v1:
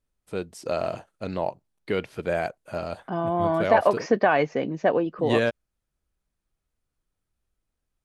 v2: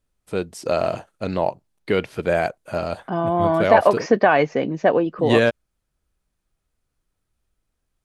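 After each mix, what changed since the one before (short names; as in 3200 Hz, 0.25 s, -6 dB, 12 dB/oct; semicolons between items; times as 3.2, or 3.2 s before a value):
first voice +6.0 dB; second voice +4.5 dB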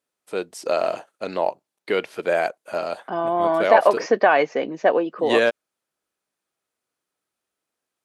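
master: add HPF 350 Hz 12 dB/oct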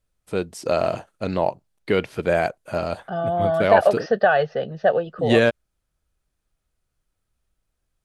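second voice: add fixed phaser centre 1500 Hz, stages 8; master: remove HPF 350 Hz 12 dB/oct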